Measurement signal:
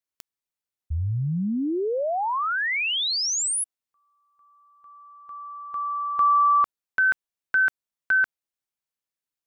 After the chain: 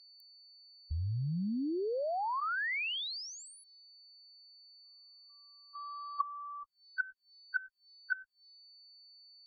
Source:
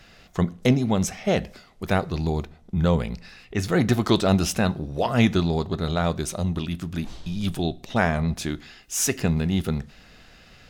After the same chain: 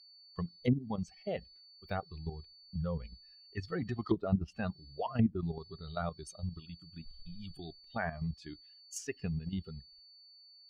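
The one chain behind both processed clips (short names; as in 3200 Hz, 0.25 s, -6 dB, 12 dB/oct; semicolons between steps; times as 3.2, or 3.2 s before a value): per-bin expansion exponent 2; gate with hold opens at -54 dBFS, closes at -55 dBFS, hold 0.157 s, range -9 dB; level quantiser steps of 10 dB; whine 4500 Hz -52 dBFS; treble ducked by the level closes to 370 Hz, closed at -20.5 dBFS; gain -4 dB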